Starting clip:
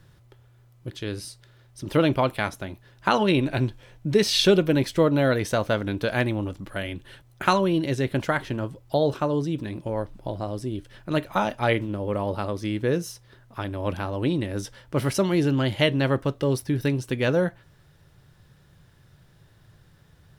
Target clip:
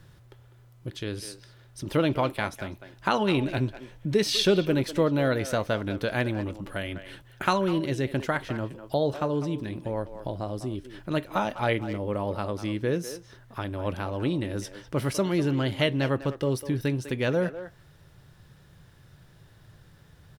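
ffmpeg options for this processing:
ffmpeg -i in.wav -filter_complex "[0:a]asplit=2[link_01][link_02];[link_02]adelay=200,highpass=300,lowpass=3400,asoftclip=type=hard:threshold=-17dB,volume=-12dB[link_03];[link_01][link_03]amix=inputs=2:normalize=0,asplit=2[link_04][link_05];[link_05]acompressor=threshold=-37dB:ratio=6,volume=0dB[link_06];[link_04][link_06]amix=inputs=2:normalize=0,volume=-4.5dB" out.wav

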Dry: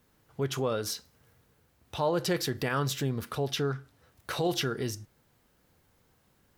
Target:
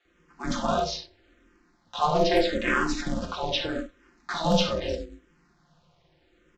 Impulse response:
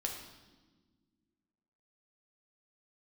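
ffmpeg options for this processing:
-filter_complex "[0:a]aeval=exprs='0.168*(cos(1*acos(clip(val(0)/0.168,-1,1)))-cos(1*PI/2))+0.00841*(cos(4*acos(clip(val(0)/0.168,-1,1)))-cos(4*PI/2))+0.00266*(cos(6*acos(clip(val(0)/0.168,-1,1)))-cos(6*PI/2))':channel_layout=same,lowpass=4500,bandreject=frequency=50:width_type=h:width=6,bandreject=frequency=100:width_type=h:width=6,bandreject=frequency=150:width_type=h:width=6,aecho=1:1:5.7:0.79,acrossover=split=550[link_01][link_02];[link_01]adelay=50[link_03];[link_03][link_02]amix=inputs=2:normalize=0[link_04];[1:a]atrim=start_sample=2205,atrim=end_sample=4410[link_05];[link_04][link_05]afir=irnorm=-1:irlink=0,aresample=16000,acrusher=bits=5:mode=log:mix=0:aa=0.000001,aresample=44100,aeval=exprs='val(0)*sin(2*PI*160*n/s)':channel_layout=same,aeval=exprs='0.141*(abs(mod(val(0)/0.141+3,4)-2)-1)':channel_layout=same,asplit=2[link_06][link_07];[link_07]afreqshift=-0.79[link_08];[link_06][link_08]amix=inputs=2:normalize=1,volume=9dB"

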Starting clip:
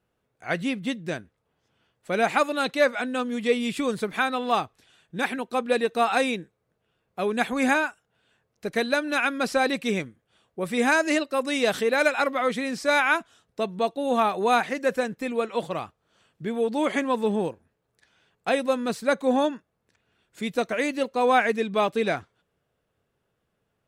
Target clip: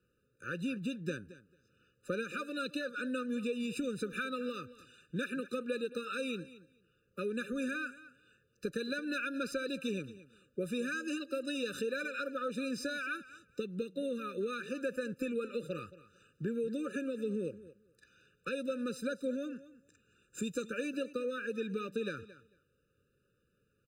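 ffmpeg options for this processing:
ffmpeg -i in.wav -filter_complex "[0:a]asettb=1/sr,asplit=3[link_01][link_02][link_03];[link_01]atrim=end=19.504[link_04];[link_02]atrim=start=19.5:end=20.68,asetpts=PTS-STARTPTS,afade=type=in:duration=0.004:curve=qsin,afade=type=out:start_time=1.176:duration=0.004:curve=qsin,equalizer=frequency=7200:width=3:gain=12[link_05];[link_03]atrim=start=20.676[link_06];[link_04][link_05]acrossfade=duration=0.004:curve1=hsin:curve2=qsin[link_07];[link_07][link_06]acrossfade=duration=0.004:curve1=qsin:curve2=hsin,asplit=2[link_08][link_09];[link_09]alimiter=limit=-20dB:level=0:latency=1:release=107,volume=3dB[link_10];[link_08][link_10]amix=inputs=2:normalize=0,acompressor=threshold=-25dB:ratio=6,acrossover=split=140|3200[link_11][link_12][link_13];[link_13]acrusher=bits=5:mode=log:mix=0:aa=0.000001[link_14];[link_11][link_12][link_14]amix=inputs=3:normalize=0,aecho=1:1:223|446:0.141|0.0212,afftfilt=real='re*eq(mod(floor(b*sr/1024/590),2),0)':imag='im*eq(mod(floor(b*sr/1024/590),2),0)':win_size=1024:overlap=0.75,volume=-7.5dB" out.wav

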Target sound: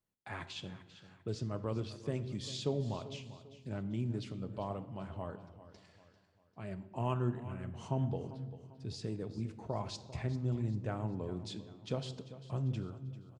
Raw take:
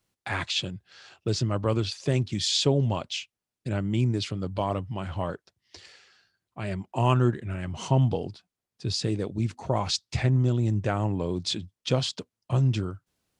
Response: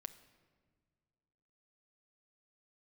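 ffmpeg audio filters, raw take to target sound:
-filter_complex "[0:a]equalizer=frequency=5000:width=0.41:gain=-7.5,aecho=1:1:395|790|1185|1580:0.178|0.0711|0.0285|0.0114[link_01];[1:a]atrim=start_sample=2205,asetrate=61740,aresample=44100[link_02];[link_01][link_02]afir=irnorm=-1:irlink=0,volume=-3dB"

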